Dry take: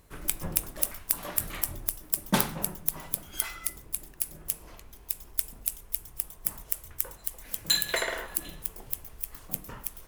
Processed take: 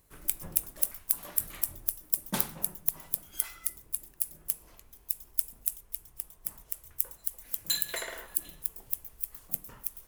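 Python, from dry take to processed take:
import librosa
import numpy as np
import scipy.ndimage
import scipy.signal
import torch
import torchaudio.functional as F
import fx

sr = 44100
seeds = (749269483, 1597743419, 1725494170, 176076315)

y = fx.high_shelf(x, sr, hz=7200.0, db=fx.steps((0.0, 10.5), (5.8, 3.5), (6.85, 11.0)))
y = y * 10.0 ** (-9.0 / 20.0)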